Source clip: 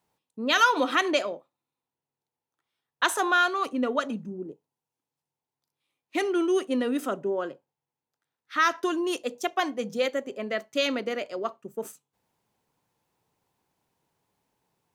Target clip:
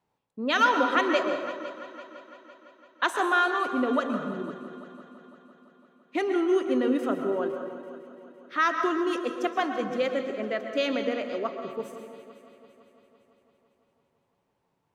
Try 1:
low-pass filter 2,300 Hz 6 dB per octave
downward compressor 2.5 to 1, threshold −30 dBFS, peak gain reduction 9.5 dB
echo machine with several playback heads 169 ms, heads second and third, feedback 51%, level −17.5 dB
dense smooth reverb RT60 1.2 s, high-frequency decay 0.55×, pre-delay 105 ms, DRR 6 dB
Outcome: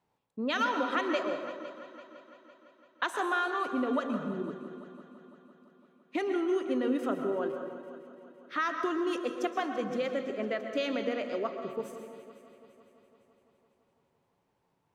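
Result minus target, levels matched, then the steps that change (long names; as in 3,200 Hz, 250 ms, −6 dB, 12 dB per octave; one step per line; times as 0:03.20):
downward compressor: peak gain reduction +9.5 dB
remove: downward compressor 2.5 to 1, threshold −30 dBFS, peak gain reduction 9.5 dB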